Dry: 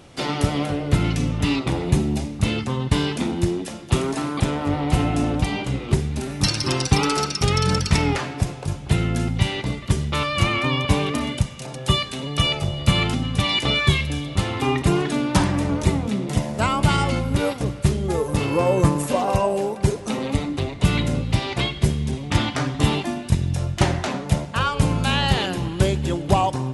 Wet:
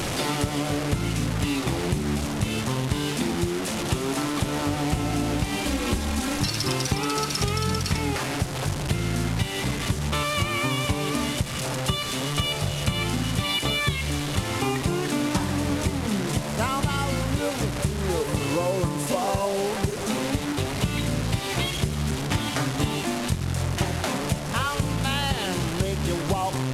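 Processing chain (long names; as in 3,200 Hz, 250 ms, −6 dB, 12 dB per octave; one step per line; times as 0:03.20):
linear delta modulator 64 kbit/s, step −22 dBFS
0:05.65–0:06.41: comb filter 3.7 ms, depth 90%
downward compressor, threshold −21 dBFS, peak gain reduction 10.5 dB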